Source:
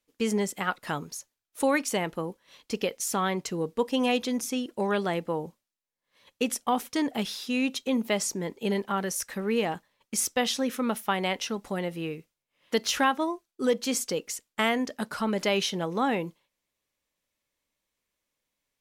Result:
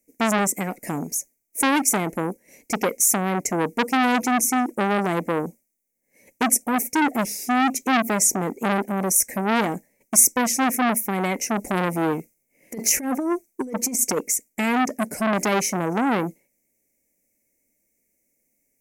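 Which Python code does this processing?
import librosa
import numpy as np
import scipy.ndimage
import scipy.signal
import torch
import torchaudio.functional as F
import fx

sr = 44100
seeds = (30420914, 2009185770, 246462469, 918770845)

y = fx.curve_eq(x, sr, hz=(130.0, 240.0, 390.0, 730.0, 1200.0, 2200.0, 3400.0, 6100.0, 15000.0), db=(0, 10, 6, 1, -25, 5, -28, 6, 12))
y = fx.over_compress(y, sr, threshold_db=-25.0, ratio=-0.5, at=(11.55, 14.19))
y = fx.transformer_sat(y, sr, knee_hz=2500.0)
y = F.gain(torch.from_numpy(y), 5.5).numpy()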